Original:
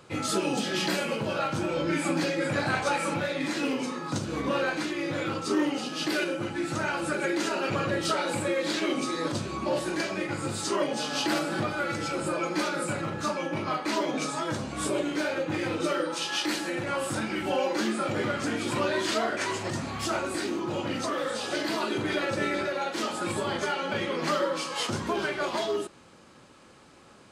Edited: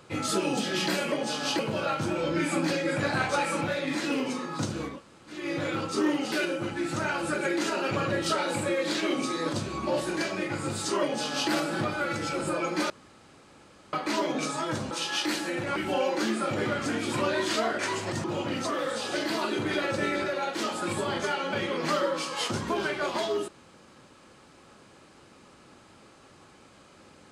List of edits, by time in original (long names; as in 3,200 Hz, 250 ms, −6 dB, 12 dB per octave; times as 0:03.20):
0:04.42–0:04.91: fill with room tone, crossfade 0.24 s
0:05.85–0:06.11: remove
0:10.82–0:11.29: duplicate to 0:01.12
0:12.69–0:13.72: fill with room tone
0:14.70–0:16.11: remove
0:16.96–0:17.34: remove
0:19.82–0:20.63: remove